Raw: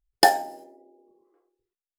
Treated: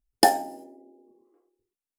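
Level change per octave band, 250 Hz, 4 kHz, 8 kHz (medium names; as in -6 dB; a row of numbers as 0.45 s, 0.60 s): +4.5 dB, -2.5 dB, +1.0 dB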